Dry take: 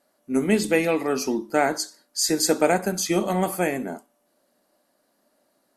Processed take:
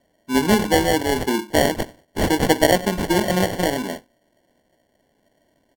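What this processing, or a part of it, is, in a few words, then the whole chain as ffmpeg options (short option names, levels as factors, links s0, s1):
crushed at another speed: -af "asetrate=55125,aresample=44100,acrusher=samples=28:mix=1:aa=0.000001,asetrate=35280,aresample=44100,volume=1.5"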